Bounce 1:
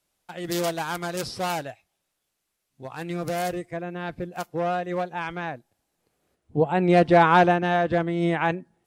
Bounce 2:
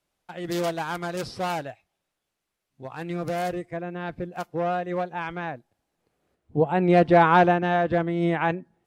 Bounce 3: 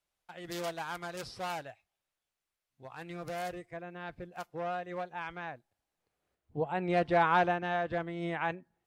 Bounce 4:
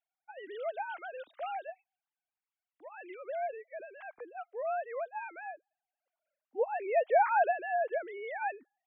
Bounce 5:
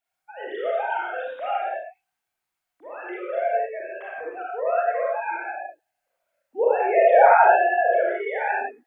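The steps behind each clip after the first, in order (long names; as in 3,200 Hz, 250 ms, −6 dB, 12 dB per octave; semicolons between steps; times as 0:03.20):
high-shelf EQ 4,700 Hz −9 dB
parametric band 240 Hz −7.5 dB 2.5 octaves; level −6.5 dB
three sine waves on the formant tracks
convolution reverb, pre-delay 23 ms, DRR −6 dB; level +5.5 dB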